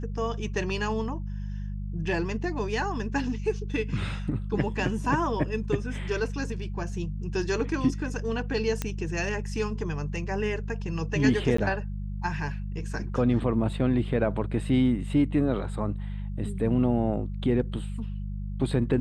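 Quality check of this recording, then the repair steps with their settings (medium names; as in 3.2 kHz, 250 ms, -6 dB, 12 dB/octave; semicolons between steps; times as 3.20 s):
hum 50 Hz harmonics 4 -33 dBFS
8.82 s: pop -14 dBFS
11.57–11.58 s: dropout 14 ms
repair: de-click; de-hum 50 Hz, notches 4; interpolate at 11.57 s, 14 ms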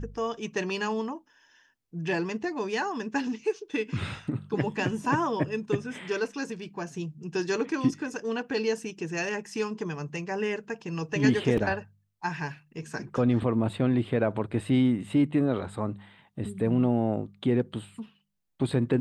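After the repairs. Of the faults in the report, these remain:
nothing left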